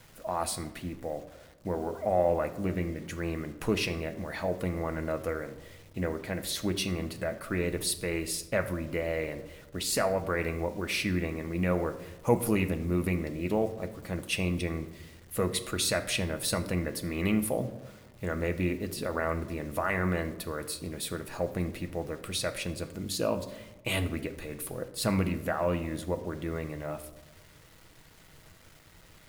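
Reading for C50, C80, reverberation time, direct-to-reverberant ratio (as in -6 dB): 13.5 dB, 15.5 dB, 1.1 s, 7.5 dB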